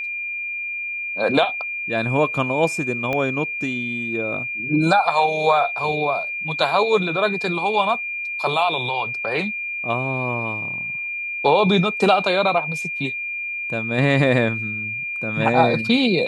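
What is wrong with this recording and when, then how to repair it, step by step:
tone 2400 Hz -25 dBFS
3.13 pop -12 dBFS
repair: de-click; notch 2400 Hz, Q 30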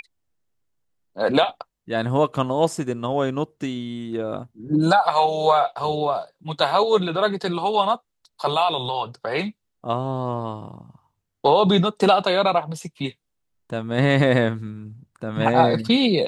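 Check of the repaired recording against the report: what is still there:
3.13 pop

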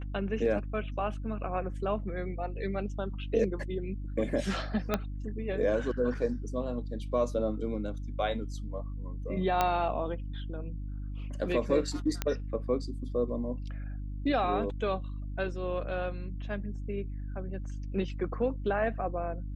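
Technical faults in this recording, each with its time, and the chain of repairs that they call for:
hum 50 Hz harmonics 6 -37 dBFS
4.94 pop -13 dBFS
9.61 pop -12 dBFS
12.22 pop -14 dBFS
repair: de-click; de-hum 50 Hz, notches 6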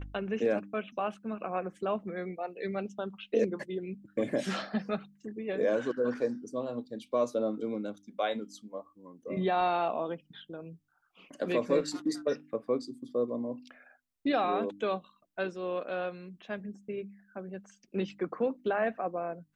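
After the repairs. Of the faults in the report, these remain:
4.94 pop

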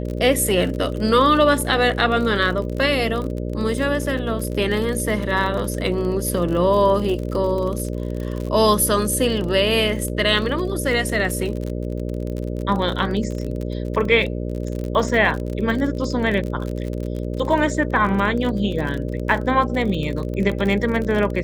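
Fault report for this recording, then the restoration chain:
buzz 60 Hz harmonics 10 -26 dBFS
crackle 42/s -26 dBFS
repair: de-click; de-hum 60 Hz, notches 10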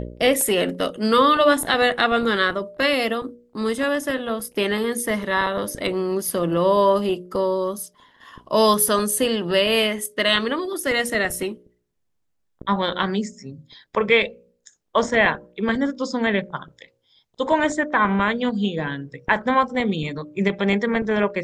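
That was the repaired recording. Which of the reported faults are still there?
none

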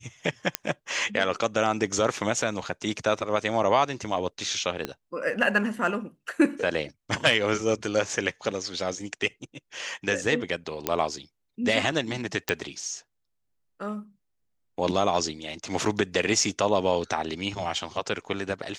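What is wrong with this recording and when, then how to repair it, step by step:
0.55 pop -5 dBFS
4.85 pop -14 dBFS
10.87 pop -7 dBFS
12.49 pop -9 dBFS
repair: de-click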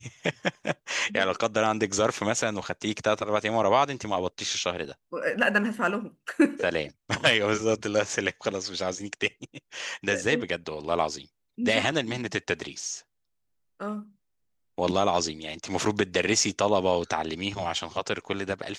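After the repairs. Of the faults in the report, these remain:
4.85 pop

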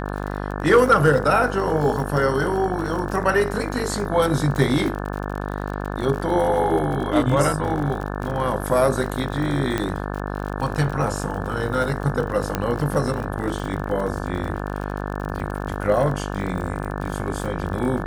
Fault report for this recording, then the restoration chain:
buzz 50 Hz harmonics 35 -28 dBFS
crackle 48/s -28 dBFS
9.78 pop -9 dBFS
12.55 pop -8 dBFS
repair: de-click; de-hum 50 Hz, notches 35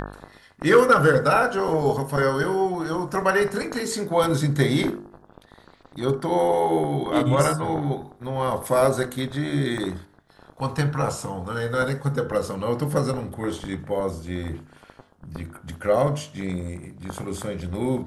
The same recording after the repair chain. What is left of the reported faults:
9.78 pop

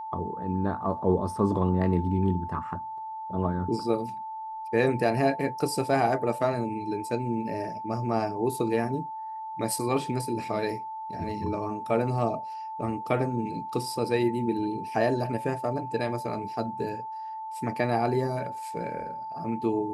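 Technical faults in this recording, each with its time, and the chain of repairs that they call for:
tone 880 Hz -34 dBFS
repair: notch 880 Hz, Q 30

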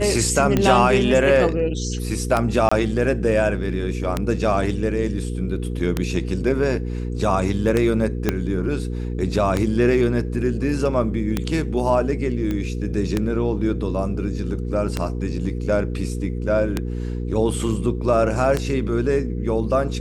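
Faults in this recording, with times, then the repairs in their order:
hum 60 Hz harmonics 8 -26 dBFS
tick 33 1/3 rpm -6 dBFS
2.69–2.71 gap 25 ms
8.29 pop -5 dBFS
12.51 pop -14 dBFS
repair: de-click; de-hum 60 Hz, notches 8; interpolate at 2.69, 25 ms

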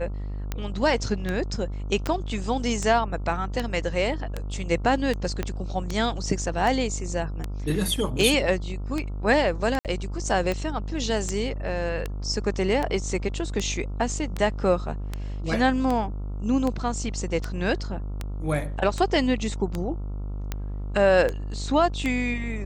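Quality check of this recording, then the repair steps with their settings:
buzz 50 Hz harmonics 28 -31 dBFS
tick 78 rpm -14 dBFS
2.07 pop -13 dBFS
5.43 pop -13 dBFS
9.79–9.85 gap 58 ms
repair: de-click; de-hum 50 Hz, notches 28; interpolate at 9.79, 58 ms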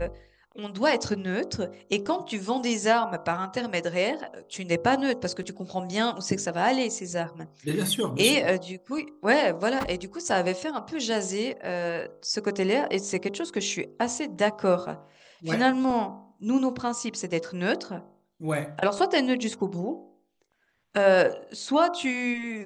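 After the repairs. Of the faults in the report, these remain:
2.07 pop
5.43 pop

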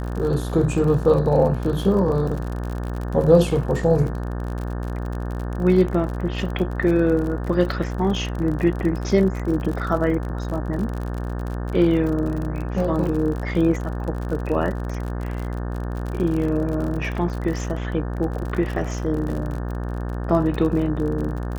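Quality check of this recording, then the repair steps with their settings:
buzz 60 Hz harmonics 30 -27 dBFS
crackle 50/s -28 dBFS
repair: de-click; de-hum 60 Hz, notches 30

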